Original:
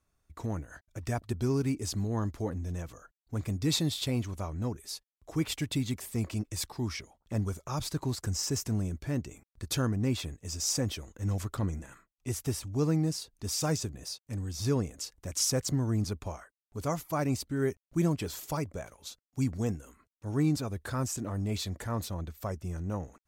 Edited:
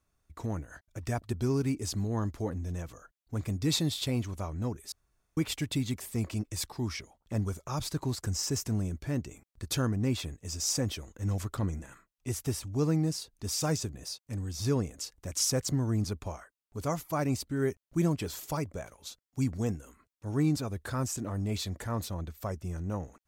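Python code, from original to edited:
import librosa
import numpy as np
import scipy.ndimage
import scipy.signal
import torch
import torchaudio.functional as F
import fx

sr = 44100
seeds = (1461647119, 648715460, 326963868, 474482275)

y = fx.edit(x, sr, fx.room_tone_fill(start_s=4.92, length_s=0.45), tone=tone)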